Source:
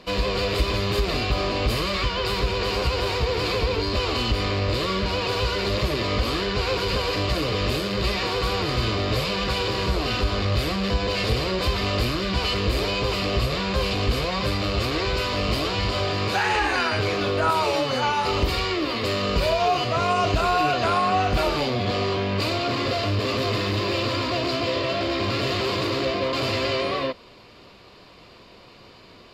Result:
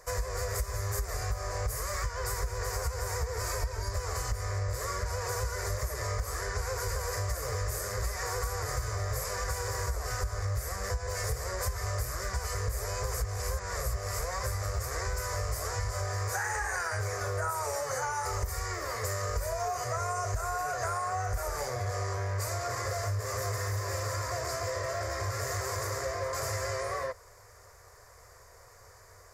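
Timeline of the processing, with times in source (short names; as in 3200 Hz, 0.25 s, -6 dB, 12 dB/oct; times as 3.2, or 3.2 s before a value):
3.4–3.92 comb 3.2 ms
13.14–14.19 reverse
whole clip: EQ curve 100 Hz 0 dB, 180 Hz -24 dB, 300 Hz -27 dB, 450 Hz -6 dB, 920 Hz -6 dB, 1900 Hz -1 dB, 2800 Hz -27 dB, 4200 Hz -19 dB, 6000 Hz +8 dB, 8600 Hz +11 dB; compressor, threshold -29 dBFS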